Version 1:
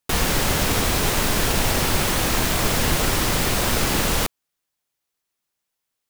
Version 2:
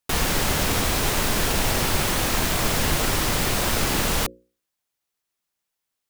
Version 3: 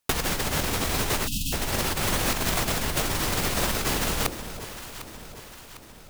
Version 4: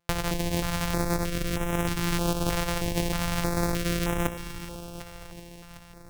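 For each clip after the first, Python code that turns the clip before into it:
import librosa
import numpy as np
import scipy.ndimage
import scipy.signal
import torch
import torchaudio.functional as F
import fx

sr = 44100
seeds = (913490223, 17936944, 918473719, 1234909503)

y1 = fx.hum_notches(x, sr, base_hz=60, count=9)
y1 = y1 * 10.0 ** (-1.5 / 20.0)
y2 = fx.over_compress(y1, sr, threshold_db=-25.0, ratio=-0.5)
y2 = fx.echo_alternate(y2, sr, ms=376, hz=820.0, feedback_pct=72, wet_db=-10)
y2 = fx.spec_erase(y2, sr, start_s=1.27, length_s=0.26, low_hz=290.0, high_hz=2500.0)
y3 = np.r_[np.sort(y2[:len(y2) // 256 * 256].reshape(-1, 256), axis=1).ravel(), y2[len(y2) // 256 * 256:]]
y3 = fx.echo_heads(y3, sr, ms=242, heads='first and second', feedback_pct=48, wet_db=-20.5)
y3 = fx.filter_held_notch(y3, sr, hz=3.2, low_hz=260.0, high_hz=4500.0)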